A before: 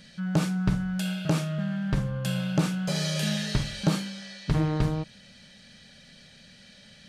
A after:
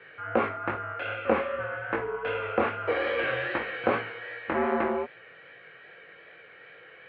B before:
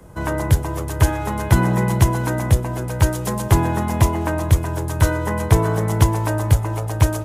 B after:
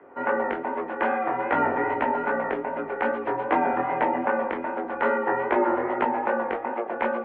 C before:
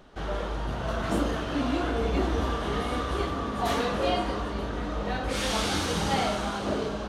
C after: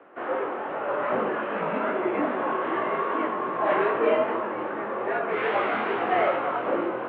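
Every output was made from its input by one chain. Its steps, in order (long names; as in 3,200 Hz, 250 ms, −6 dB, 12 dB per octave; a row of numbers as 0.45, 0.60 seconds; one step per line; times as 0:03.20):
single-sideband voice off tune −81 Hz 410–2,400 Hz
chorus effect 2.5 Hz, delay 17 ms, depth 6.7 ms
normalise the peak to −9 dBFS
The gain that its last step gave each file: +12.0, +4.5, +9.0 decibels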